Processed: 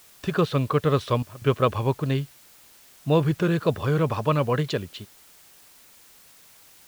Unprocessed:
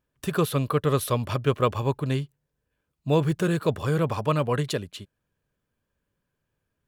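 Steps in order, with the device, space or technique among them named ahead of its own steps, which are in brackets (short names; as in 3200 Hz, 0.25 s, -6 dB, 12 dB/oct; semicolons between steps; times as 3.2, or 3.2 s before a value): LPF 6000 Hz; worn cassette (LPF 6400 Hz; wow and flutter; level dips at 1.23, 0.185 s -17 dB; white noise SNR 27 dB); gain +1.5 dB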